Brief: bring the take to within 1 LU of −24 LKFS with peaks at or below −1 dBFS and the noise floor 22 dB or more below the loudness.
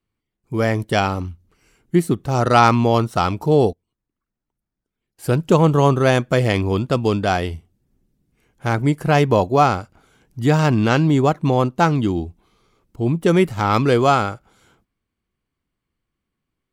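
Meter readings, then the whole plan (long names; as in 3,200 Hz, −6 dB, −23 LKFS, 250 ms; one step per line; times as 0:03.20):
integrated loudness −18.0 LKFS; sample peak −1.0 dBFS; target loudness −24.0 LKFS
→ level −6 dB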